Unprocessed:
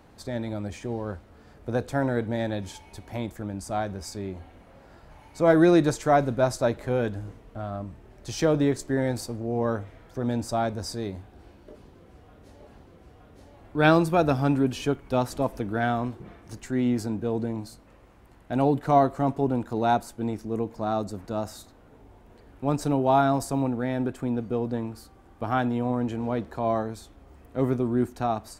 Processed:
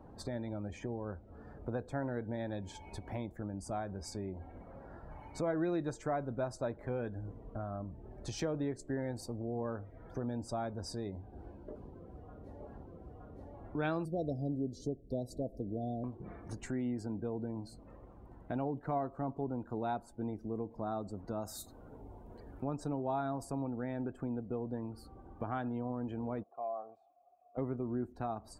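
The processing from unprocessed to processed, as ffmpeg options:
-filter_complex "[0:a]asettb=1/sr,asplit=3[a][b][c];[a]atrim=end=14.054[d];[b]atrim=start=14.05:end=16.04,asetpts=PTS-STARTPTS,afade=t=in:d=0.004:c=qsin,afade=t=out:st=1.986:d=0.004:c=qsin,asuperstop=centerf=1600:order=12:qfactor=0.52[e];[c]atrim=start=16.036[f];[d][e]acrossfade=d=0.004:c1=hsin:c2=qsin[g];[g][f]acrossfade=d=0.004:c1=qsin:c2=hsin,asettb=1/sr,asplit=3[h][i][j];[h]atrim=end=21.414[k];[i]atrim=start=21.41:end=22.64,asetpts=PTS-STARTPTS,afade=t=in:d=0.004:c=qsin,afade=t=out:st=1.226:d=0.004:c=qsin,highshelf=f=4.6k:g=11.5[l];[j]atrim=start=22.636[m];[k][l]acrossfade=d=0.004:c1=hsin:c2=qsin[n];[n][m]acrossfade=d=0.004:c1=qsin:c2=hsin,asplit=3[o][p][q];[o]afade=t=out:st=26.42:d=0.02[r];[p]asplit=3[s][t][u];[s]bandpass=f=730:t=q:w=8,volume=0dB[v];[t]bandpass=f=1.09k:t=q:w=8,volume=-6dB[w];[u]bandpass=f=2.44k:t=q:w=8,volume=-9dB[x];[v][w][x]amix=inputs=3:normalize=0,afade=t=in:st=26.42:d=0.02,afade=t=out:st=27.57:d=0.02[y];[q]afade=t=in:st=27.57:d=0.02[z];[r][y][z]amix=inputs=3:normalize=0,acompressor=threshold=-41dB:ratio=2.5,equalizer=f=5.6k:w=0.4:g=-3.5,afftdn=nr=18:nf=-58,volume=1dB"

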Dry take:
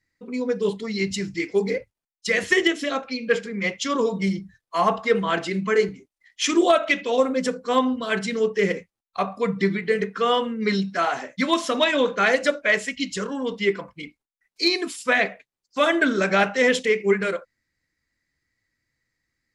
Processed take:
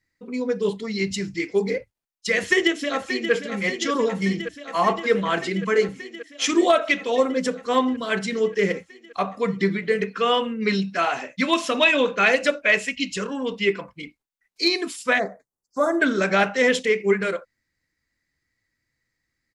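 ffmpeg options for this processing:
-filter_complex "[0:a]asplit=2[a][b];[b]afade=t=in:st=2.35:d=0.01,afade=t=out:st=3.32:d=0.01,aecho=0:1:580|1160|1740|2320|2900|3480|4060|4640|5220|5800|6380|6960:0.334965|0.267972|0.214378|0.171502|0.137202|0.109761|0.0878092|0.0702473|0.0561979|0.0449583|0.0359666|0.0287733[c];[a][c]amix=inputs=2:normalize=0,asettb=1/sr,asplit=3[d][e][f];[d]atrim=end=10.014[g];[e]atrim=start=10.01:end=13.86,asetpts=PTS-STARTPTS,afade=t=in:d=0.004:c=qsin,afade=t=out:st=3.846:d=0.004:c=qsin,equalizer=f=2.6k:t=o:w=0.21:g=10.5[h];[f]atrim=start=13.856[i];[g][h]acrossfade=d=0.004:c1=hsin:c2=qsin[j];[j][i]acrossfade=d=0.004:c1=qsin:c2=hsin,asplit=3[k][l][m];[k]afade=t=out:st=15.18:d=0.02[n];[l]asuperstop=centerf=2800:order=4:qfactor=0.59,afade=t=in:st=15.18:d=0.02,afade=t=out:st=15.99:d=0.02[o];[m]afade=t=in:st=15.99:d=0.02[p];[n][o][p]amix=inputs=3:normalize=0"

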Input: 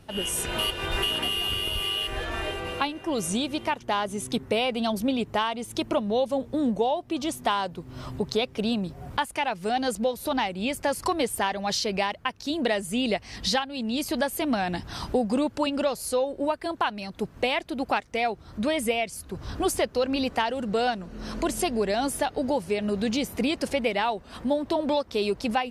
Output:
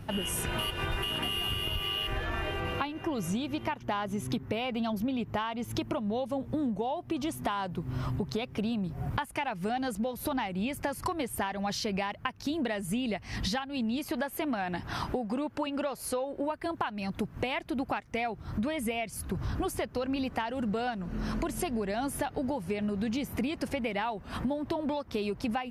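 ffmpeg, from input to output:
-filter_complex "[0:a]asettb=1/sr,asplit=3[a][b][c];[a]atrim=end=1.654[d];[b]atrim=start=1.65:end=5.82,asetpts=PTS-STARTPTS,afade=t=in:d=0.004:c=qsin,afade=t=out:st=4.166:d=0.004:c=qsin,equalizer=f=9.2k:w=4.3:g=-13[e];[c]atrim=start=5.816[f];[d][e]acrossfade=d=0.004:c1=hsin:c2=qsin[g];[g][f]acrossfade=d=0.004:c1=qsin:c2=hsin,asettb=1/sr,asplit=3[h][i][j];[h]atrim=end=13.994[k];[i]atrim=start=13.99:end=16.5,asetpts=PTS-STARTPTS,afade=t=in:d=0.004:c=qsin,afade=t=out:st=2.506:d=0.004:c=qsin,bass=f=250:g=-8,treble=f=4k:g=-4[l];[j]atrim=start=16.496[m];[k][l]acrossfade=d=0.004:c1=hsin:c2=qsin[n];[n][m]acrossfade=d=0.004:c1=qsin:c2=hsin,equalizer=f=125:t=o:w=1:g=5,equalizer=f=500:t=o:w=1:g=-5,equalizer=f=4k:t=o:w=1:g=-6,equalizer=f=8k:t=o:w=1:g=-7,acompressor=threshold=-36dB:ratio=6,volume=6.5dB"

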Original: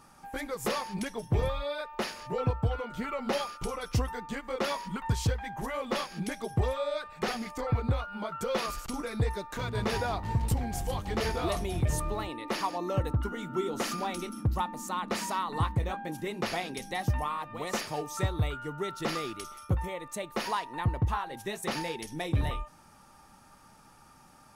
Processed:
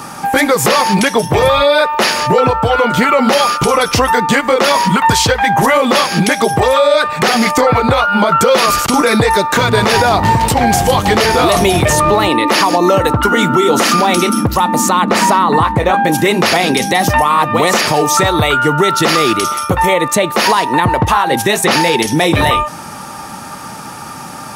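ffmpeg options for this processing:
-filter_complex "[0:a]asettb=1/sr,asplit=3[a][b][c];[a]atrim=end=15.044[d];[b]atrim=start=15.04:end=15.94,asetpts=PTS-STARTPTS,afade=t=in:d=0.004:c=qsin,afade=t=out:st=0.896:d=0.004:c=qsin,highshelf=f=2.7k:g=-10[e];[c]atrim=start=15.936[f];[d][e]acrossfade=d=0.004:c1=hsin:c2=qsin[g];[g][f]acrossfade=d=0.004:c1=qsin:c2=hsin,highpass=110,acrossover=split=470|5400[h][i][j];[h]acompressor=threshold=-41dB:ratio=4[k];[i]acompressor=threshold=-34dB:ratio=4[l];[j]acompressor=threshold=-47dB:ratio=4[m];[k][l][m]amix=inputs=3:normalize=0,alimiter=level_in=30dB:limit=-1dB:release=50:level=0:latency=1,volume=-1dB"

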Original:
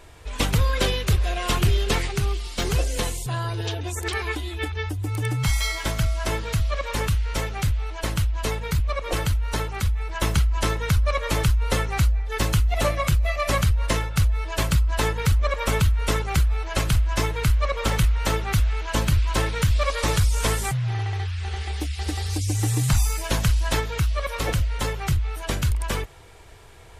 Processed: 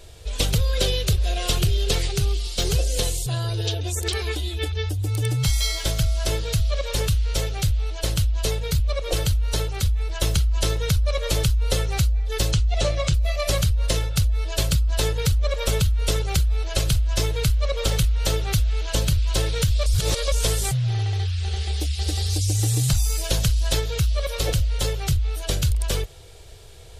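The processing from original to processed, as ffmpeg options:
-filter_complex "[0:a]asettb=1/sr,asplit=3[a][b][c];[a]atrim=end=12.514[d];[b]atrim=start=12.51:end=13.14,asetpts=PTS-STARTPTS,afade=t=in:d=0.004:c=qsin,afade=t=out:st=0.626:d=0.004:c=qsin,lowpass=f=7.6k:w=0.5412,lowpass=f=7.6k:w=1.3066[e];[c]atrim=start=13.136[f];[d][e]acrossfade=d=0.004:c1=hsin:c2=qsin[g];[g][f]acrossfade=d=0.004:c1=qsin:c2=hsin,asplit=3[h][i][j];[h]atrim=end=19.862[k];[i]atrim=start=19.858:end=20.322,asetpts=PTS-STARTPTS,areverse[l];[j]atrim=start=20.318[m];[k][l]acrossfade=d=0.004:c1=hsin:c2=hsin[n];[n][m]acrossfade=d=0.004:c1=hsin:c2=hsin,equalizer=f=250:t=o:w=1:g=-10,equalizer=f=500:t=o:w=1:g=3,equalizer=f=1k:t=o:w=1:g=-11,equalizer=f=2k:t=o:w=1:g=-8,equalizer=f=4k:t=o:w=1:g=4,acompressor=threshold=-21dB:ratio=6,volume=4.5dB"

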